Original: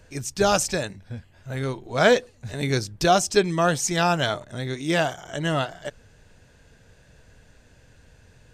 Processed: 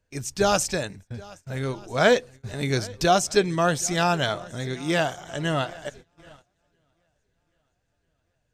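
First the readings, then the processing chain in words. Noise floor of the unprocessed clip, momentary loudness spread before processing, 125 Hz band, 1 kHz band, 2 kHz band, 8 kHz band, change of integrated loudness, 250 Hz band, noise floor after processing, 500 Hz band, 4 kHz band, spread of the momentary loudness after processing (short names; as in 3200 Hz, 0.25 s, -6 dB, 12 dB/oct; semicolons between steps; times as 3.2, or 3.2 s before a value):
-56 dBFS, 16 LU, -1.0 dB, -1.0 dB, -1.0 dB, -1.0 dB, -1.0 dB, -1.0 dB, -74 dBFS, -1.0 dB, -1.0 dB, 16 LU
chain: swung echo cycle 1.292 s, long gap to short 1.5:1, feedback 41%, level -22.5 dB; gate -42 dBFS, range -21 dB; gain -1 dB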